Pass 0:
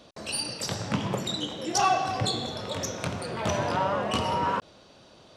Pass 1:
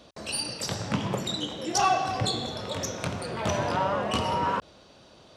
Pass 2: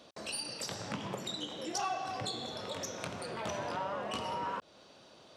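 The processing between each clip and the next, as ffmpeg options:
-af "equalizer=f=61:t=o:w=0.3:g=7"
-af "highpass=f=220:p=1,acompressor=threshold=-36dB:ratio=2,volume=-3dB"

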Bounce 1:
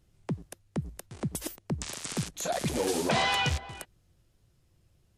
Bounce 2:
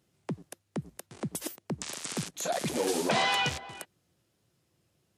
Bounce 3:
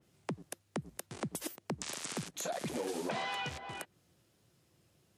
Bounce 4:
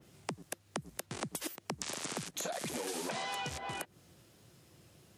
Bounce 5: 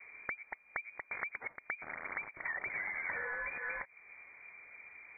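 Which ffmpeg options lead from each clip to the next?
-af "highpass=170"
-af "acompressor=threshold=-39dB:ratio=4,adynamicequalizer=threshold=0.002:dfrequency=2900:dqfactor=0.7:tfrequency=2900:tqfactor=0.7:attack=5:release=100:ratio=0.375:range=2.5:mode=cutabove:tftype=highshelf,volume=3dB"
-filter_complex "[0:a]acrossover=split=990|5300[a][b][c];[a]acompressor=threshold=-50dB:ratio=4[d];[b]acompressor=threshold=-53dB:ratio=4[e];[c]acompressor=threshold=-51dB:ratio=4[f];[d][e][f]amix=inputs=3:normalize=0,volume=9dB"
-af "acompressor=threshold=-57dB:ratio=1.5,lowpass=f=2.1k:t=q:w=0.5098,lowpass=f=2.1k:t=q:w=0.6013,lowpass=f=2.1k:t=q:w=0.9,lowpass=f=2.1k:t=q:w=2.563,afreqshift=-2500,volume=8.5dB"

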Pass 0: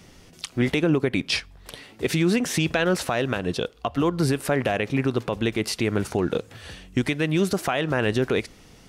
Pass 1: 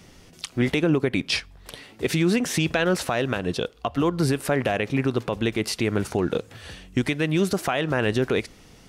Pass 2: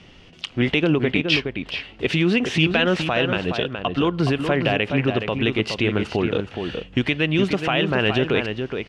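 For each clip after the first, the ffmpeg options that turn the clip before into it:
-af anull
-filter_complex "[0:a]lowpass=3.8k,equalizer=f=2.9k:t=o:w=0.49:g=10,asplit=2[a][b];[b]adelay=419.8,volume=-6dB,highshelf=f=4k:g=-9.45[c];[a][c]amix=inputs=2:normalize=0,volume=1.5dB"

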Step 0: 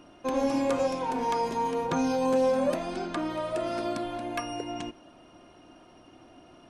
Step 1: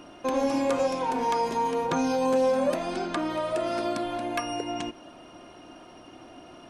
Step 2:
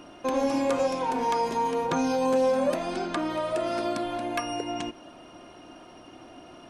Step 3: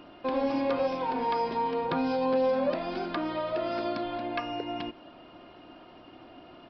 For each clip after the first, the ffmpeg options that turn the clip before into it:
-filter_complex "[0:a]asplit=2[a][b];[b]acompressor=threshold=-37dB:ratio=6,volume=1.5dB[c];[a][c]amix=inputs=2:normalize=0,lowshelf=f=200:g=-5"
-af anull
-af "aresample=11025,aresample=44100,volume=-2.5dB"

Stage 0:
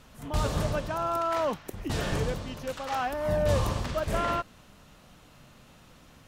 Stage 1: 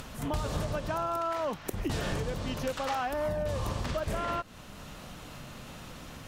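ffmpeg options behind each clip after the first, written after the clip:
-af "acompressor=mode=upward:threshold=-46dB:ratio=2.5,alimiter=limit=-21.5dB:level=0:latency=1:release=299,acompressor=threshold=-36dB:ratio=6,volume=7dB"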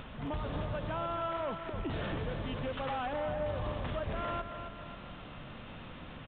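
-af "asoftclip=type=tanh:threshold=-28.5dB,aresample=8000,aresample=44100,aecho=1:1:269|538|807|1076|1345|1614:0.398|0.203|0.104|0.0528|0.0269|0.0137,volume=-2dB"

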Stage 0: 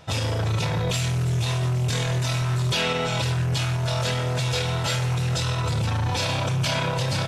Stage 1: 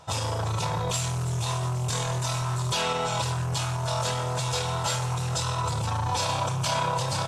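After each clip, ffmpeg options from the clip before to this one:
-af "equalizer=f=250:t=o:w=1:g=-4,equalizer=f=1k:t=o:w=1:g=10,equalizer=f=2k:t=o:w=1:g=-5,equalizer=f=8k:t=o:w=1:g=8,volume=-4.5dB"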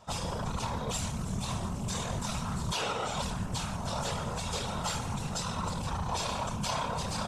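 -af "afftfilt=real='hypot(re,im)*cos(2*PI*random(0))':imag='hypot(re,im)*sin(2*PI*random(1))':win_size=512:overlap=0.75"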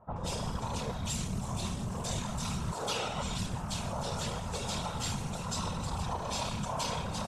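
-filter_complex "[0:a]acrossover=split=1400[a][b];[b]adelay=160[c];[a][c]amix=inputs=2:normalize=0,volume=-1dB"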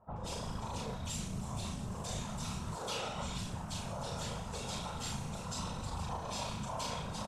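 -filter_complex "[0:a]asplit=2[a][b];[b]adelay=38,volume=-4.5dB[c];[a][c]amix=inputs=2:normalize=0,volume=-6dB"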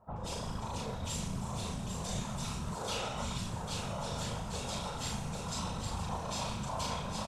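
-af "aecho=1:1:797:0.447,volume=1.5dB"

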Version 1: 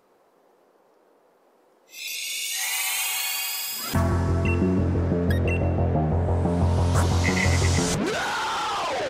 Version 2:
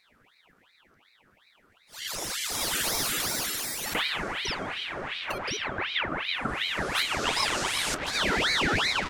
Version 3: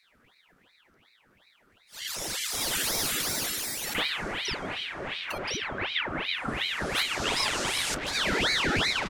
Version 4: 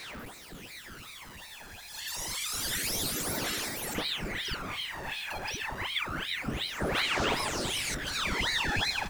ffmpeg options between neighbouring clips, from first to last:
-af "lowshelf=f=570:t=q:w=3:g=-10.5,aeval=exprs='val(0)*sin(2*PI*1800*n/s+1800*0.75/2.7*sin(2*PI*2.7*n/s))':c=same"
-filter_complex "[0:a]acrossover=split=1100[a][b];[a]adelay=30[c];[c][b]amix=inputs=2:normalize=0"
-af "aeval=exprs='val(0)+0.5*0.0158*sgn(val(0))':c=same,aphaser=in_gain=1:out_gain=1:delay=1.2:decay=0.59:speed=0.28:type=sinusoidal,volume=-6.5dB"

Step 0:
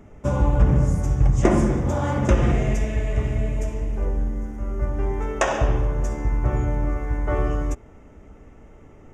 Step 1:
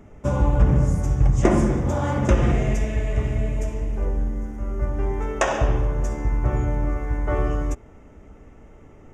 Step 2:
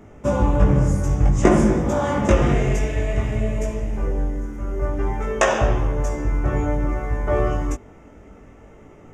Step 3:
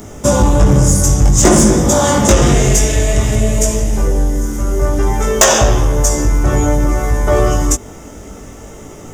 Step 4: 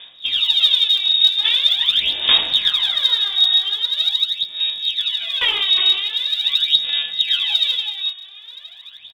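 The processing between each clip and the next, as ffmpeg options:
-af anull
-af "lowshelf=f=79:g=-8,flanger=delay=18.5:depth=2.6:speed=0.55,volume=7dB"
-filter_complex "[0:a]asplit=2[a][b];[b]acompressor=threshold=-25dB:ratio=6,volume=-1dB[c];[a][c]amix=inputs=2:normalize=0,aexciter=amount=6.1:drive=4.3:freq=3.5k,asoftclip=type=tanh:threshold=-7.5dB,volume=6.5dB"
-filter_complex "[0:a]asplit=2[a][b];[b]aecho=0:1:360:0.531[c];[a][c]amix=inputs=2:normalize=0,lowpass=f=3.2k:t=q:w=0.5098,lowpass=f=3.2k:t=q:w=0.6013,lowpass=f=3.2k:t=q:w=0.9,lowpass=f=3.2k:t=q:w=2.563,afreqshift=-3800,aphaser=in_gain=1:out_gain=1:delay=2.7:decay=0.74:speed=0.43:type=sinusoidal,volume=-11dB"

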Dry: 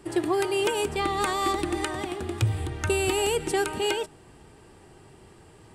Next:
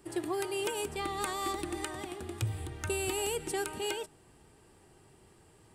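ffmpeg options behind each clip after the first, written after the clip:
-af "highshelf=f=8.5k:g=10,volume=-9dB"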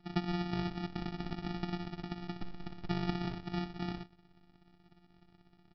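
-af "afftfilt=real='hypot(re,im)*cos(PI*b)':imag='0':win_size=512:overlap=0.75,aresample=11025,acrusher=samples=21:mix=1:aa=0.000001,aresample=44100,volume=1dB"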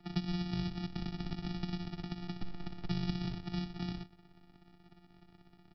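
-filter_complex "[0:a]acrossover=split=210|3000[a][b][c];[b]acompressor=threshold=-50dB:ratio=4[d];[a][d][c]amix=inputs=3:normalize=0,volume=3dB"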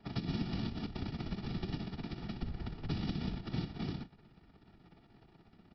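-filter_complex "[0:a]lowpass=5.2k,acrossover=split=230|3000[a][b][c];[b]acompressor=threshold=-40dB:ratio=6[d];[a][d][c]amix=inputs=3:normalize=0,afftfilt=real='hypot(re,im)*cos(2*PI*random(0))':imag='hypot(re,im)*sin(2*PI*random(1))':win_size=512:overlap=0.75,volume=6dB"

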